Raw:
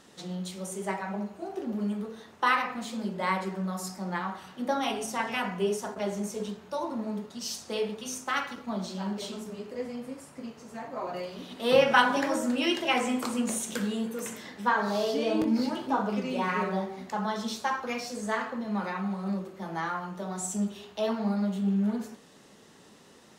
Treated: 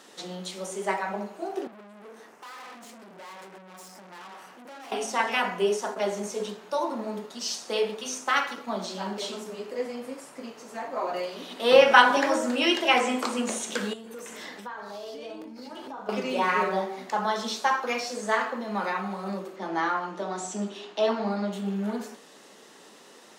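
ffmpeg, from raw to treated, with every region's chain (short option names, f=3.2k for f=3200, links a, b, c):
-filter_complex "[0:a]asettb=1/sr,asplit=3[a][b][c];[a]atrim=end=1.674[d];[b]atrim=start=1.67:end=4.92,asetpts=PTS-STARTPTS,afade=t=in:d=0.004:c=qsin,afade=t=out:st=3.246:d=0.004:c=qsin,equalizer=f=3.7k:t=o:w=0.48:g=-12,acompressor=threshold=-32dB:ratio=6:attack=3.2:release=140:knee=1:detection=peak,aeval=exprs='(tanh(224*val(0)+0.45)-tanh(0.45))/224':c=same[e];[c]atrim=start=4.916[f];[d][e]acrossfade=d=0.004:c1=hsin:c2=qsin[g];[g][f]acrossfade=d=0.004:c1=qsin:c2=hsin,asettb=1/sr,asplit=3[h][i][j];[h]atrim=end=13.934[k];[i]atrim=start=13.93:end=16.09,asetpts=PTS-STARTPTS,afade=t=in:d=0.004:c=qsin,afade=t=out:st=2.156:d=0.004:c=qsin,acompressor=threshold=-39dB:ratio=16:attack=3.2:release=140:knee=1:detection=peak,aeval=exprs='val(0)+0.00178*(sin(2*PI*60*n/s)+sin(2*PI*2*60*n/s)/2+sin(2*PI*3*60*n/s)/3+sin(2*PI*4*60*n/s)/4+sin(2*PI*5*60*n/s)/5)':c=same[l];[j]atrim=start=16.086[m];[k][l]acrossfade=d=0.004:c1=hsin:c2=qsin[n];[n][m]acrossfade=d=0.004:c1=qsin:c2=hsin,asettb=1/sr,asplit=3[o][p][q];[o]atrim=end=19.564[r];[p]atrim=start=19.56:end=21.53,asetpts=PTS-STARTPTS,afade=t=in:d=0.004:c=qsin,afade=t=out:st=1.966:d=0.004:c=qsin,lowpass=6.5k,equalizer=f=310:w=4.5:g=8.5[s];[q]atrim=start=21.526[t];[r][s]acrossfade=d=0.004:c1=hsin:c2=qsin[u];[u][t]acrossfade=d=0.004:c1=qsin:c2=hsin,highpass=330,acrossover=split=7600[v][w];[w]acompressor=threshold=-56dB:ratio=4:attack=1:release=60[x];[v][x]amix=inputs=2:normalize=0,volume=5.5dB"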